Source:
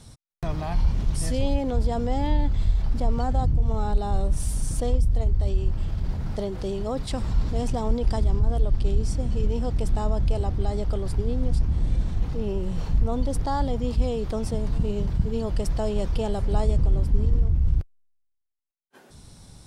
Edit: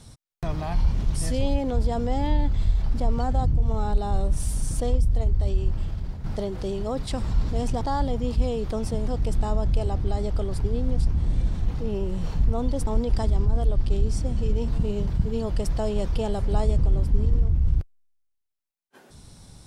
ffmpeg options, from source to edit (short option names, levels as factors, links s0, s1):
-filter_complex "[0:a]asplit=6[s0][s1][s2][s3][s4][s5];[s0]atrim=end=6.24,asetpts=PTS-STARTPTS,afade=t=out:st=5.76:d=0.48:silence=0.375837[s6];[s1]atrim=start=6.24:end=7.812,asetpts=PTS-STARTPTS,afade=t=in:d=0.004:c=hsin:silence=0.375837[s7];[s2]atrim=start=13.408:end=14.682[s8];[s3]atrim=start=9.618:end=13.412[s9];[s4]atrim=start=7.808:end=9.622[s10];[s5]atrim=start=14.678[s11];[s6][s7]concat=n=2:v=0:a=1[s12];[s12][s8]acrossfade=d=0.004:c1=hsin:c2=hsin[s13];[s13][s9]acrossfade=d=0.004:c1=hsin:c2=hsin[s14];[s14][s10]acrossfade=d=0.004:c1=hsin:c2=hsin[s15];[s15][s11]acrossfade=d=0.004:c1=hsin:c2=hsin"